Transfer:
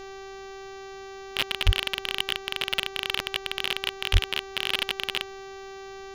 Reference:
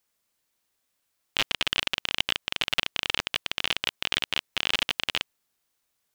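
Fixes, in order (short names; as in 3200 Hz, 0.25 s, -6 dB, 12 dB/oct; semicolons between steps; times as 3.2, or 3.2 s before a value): clip repair -10 dBFS; de-hum 388.6 Hz, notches 18; 1.65–1.77 HPF 140 Hz 24 dB/oct; 4.12–4.24 HPF 140 Hz 24 dB/oct; expander -33 dBFS, range -21 dB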